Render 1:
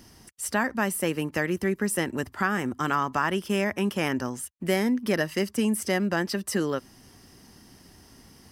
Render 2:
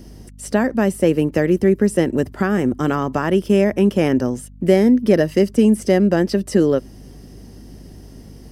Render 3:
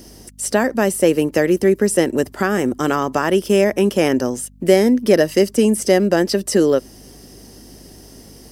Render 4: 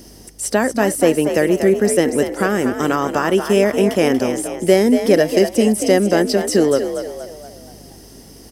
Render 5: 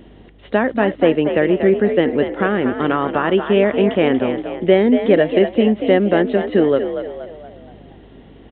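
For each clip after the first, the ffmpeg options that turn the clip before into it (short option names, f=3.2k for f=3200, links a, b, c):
-filter_complex "[0:a]acrossover=split=9300[a][b];[b]acompressor=threshold=-48dB:ratio=4:attack=1:release=60[c];[a][c]amix=inputs=2:normalize=0,lowshelf=f=740:t=q:w=1.5:g=8.5,aeval=exprs='val(0)+0.00794*(sin(2*PI*50*n/s)+sin(2*PI*2*50*n/s)/2+sin(2*PI*3*50*n/s)/3+sin(2*PI*4*50*n/s)/4+sin(2*PI*5*50*n/s)/5)':c=same,volume=2dB"
-af "bass=f=250:g=-9,treble=f=4k:g=7,volume=3dB"
-filter_complex "[0:a]asplit=6[a][b][c][d][e][f];[b]adelay=236,afreqshift=51,volume=-8.5dB[g];[c]adelay=472,afreqshift=102,volume=-15.6dB[h];[d]adelay=708,afreqshift=153,volume=-22.8dB[i];[e]adelay=944,afreqshift=204,volume=-29.9dB[j];[f]adelay=1180,afreqshift=255,volume=-37dB[k];[a][g][h][i][j][k]amix=inputs=6:normalize=0"
-af "aresample=8000,aresample=44100"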